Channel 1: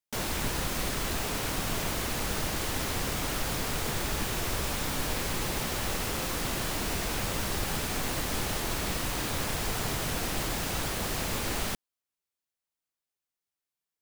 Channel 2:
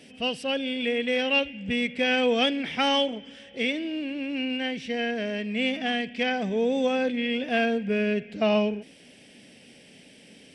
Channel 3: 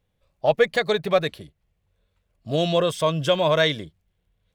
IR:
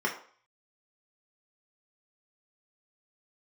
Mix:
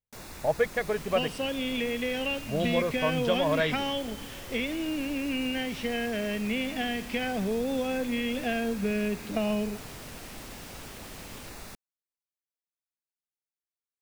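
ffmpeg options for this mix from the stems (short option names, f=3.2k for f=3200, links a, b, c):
-filter_complex "[0:a]bandreject=f=3.1k:w=7.4,volume=-12dB[a];[1:a]acrossover=split=180[b][c];[c]acompressor=threshold=-29dB:ratio=6[d];[b][d]amix=inputs=2:normalize=0,adelay=950,volume=1dB[e];[2:a]bandreject=f=3.6k:w=12,afwtdn=0.0224,volume=-7dB[f];[a][e][f]amix=inputs=3:normalize=0,acrossover=split=3300[g][h];[h]acompressor=threshold=-38dB:ratio=4:attack=1:release=60[i];[g][i]amix=inputs=2:normalize=0"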